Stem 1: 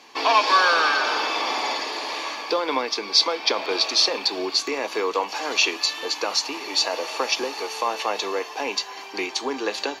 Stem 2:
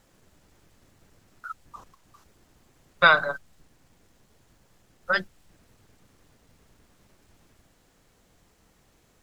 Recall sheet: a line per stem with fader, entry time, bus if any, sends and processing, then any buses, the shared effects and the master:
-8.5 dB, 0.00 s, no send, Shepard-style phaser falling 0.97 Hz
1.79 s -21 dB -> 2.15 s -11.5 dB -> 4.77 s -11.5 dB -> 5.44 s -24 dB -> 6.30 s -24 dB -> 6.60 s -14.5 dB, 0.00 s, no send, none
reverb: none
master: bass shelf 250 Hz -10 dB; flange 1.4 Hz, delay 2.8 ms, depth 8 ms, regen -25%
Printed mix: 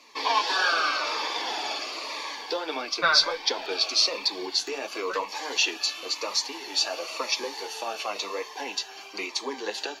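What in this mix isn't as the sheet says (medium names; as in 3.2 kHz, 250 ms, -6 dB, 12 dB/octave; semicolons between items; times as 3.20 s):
stem 1 -8.5 dB -> +1.0 dB; stem 2 -21.0 dB -> -11.5 dB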